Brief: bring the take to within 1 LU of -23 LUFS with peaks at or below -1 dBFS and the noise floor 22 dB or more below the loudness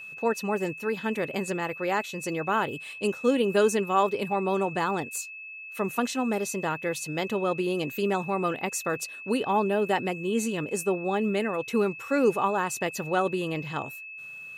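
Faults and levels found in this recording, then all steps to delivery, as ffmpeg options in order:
steady tone 2600 Hz; tone level -39 dBFS; loudness -27.5 LUFS; peak -10.0 dBFS; loudness target -23.0 LUFS
-> -af "bandreject=f=2.6k:w=30"
-af "volume=4.5dB"

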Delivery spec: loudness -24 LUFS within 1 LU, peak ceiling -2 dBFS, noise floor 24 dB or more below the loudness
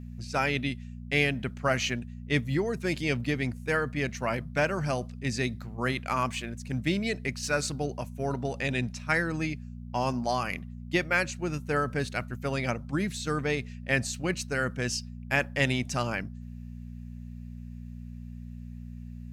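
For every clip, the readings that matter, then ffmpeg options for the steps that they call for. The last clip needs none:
hum 60 Hz; harmonics up to 240 Hz; hum level -38 dBFS; loudness -30.0 LUFS; peak -11.0 dBFS; loudness target -24.0 LUFS
-> -af "bandreject=f=60:t=h:w=4,bandreject=f=120:t=h:w=4,bandreject=f=180:t=h:w=4,bandreject=f=240:t=h:w=4"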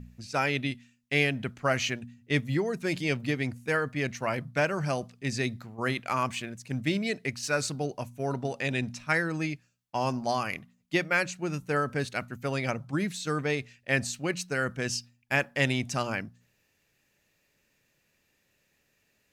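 hum none; loudness -30.0 LUFS; peak -10.5 dBFS; loudness target -24.0 LUFS
-> -af "volume=6dB"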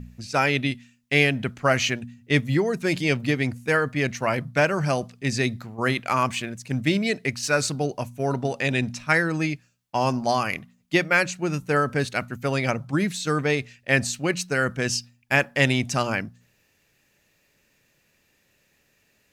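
loudness -24.0 LUFS; peak -4.5 dBFS; noise floor -67 dBFS

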